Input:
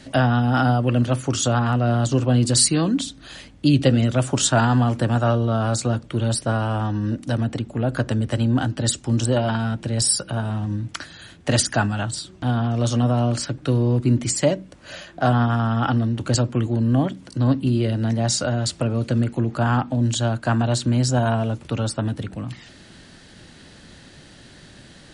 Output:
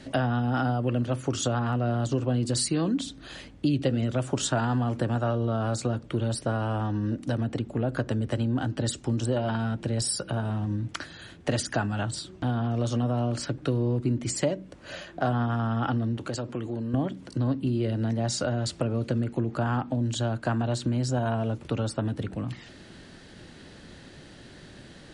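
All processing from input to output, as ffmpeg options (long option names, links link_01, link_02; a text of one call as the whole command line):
ffmpeg -i in.wav -filter_complex "[0:a]asettb=1/sr,asplit=3[link_01][link_02][link_03];[link_01]atrim=end=16.174[link_04];[link_02]atrim=start=16.17:end=16.94,asetpts=PTS-STARTPTS,afade=type=in:duration=0.004:curve=qsin,afade=type=out:start_time=0.766:duration=0.004:curve=qsin,lowshelf=frequency=190:gain=-9,acompressor=threshold=-29dB:ratio=2.5:attack=3.2:release=140:knee=1:detection=peak[link_05];[link_03]atrim=start=16.936[link_06];[link_04][link_05]acrossfade=duration=0.004:curve1=hsin:curve2=qsin[link_07];[link_07][link_06]acrossfade=duration=0.004:curve1=qsin:curve2=hsin,highshelf=frequency=4600:gain=-5.5,acompressor=threshold=-24dB:ratio=2.5,equalizer=frequency=400:width_type=o:width=0.93:gain=3.5,volume=-2dB" out.wav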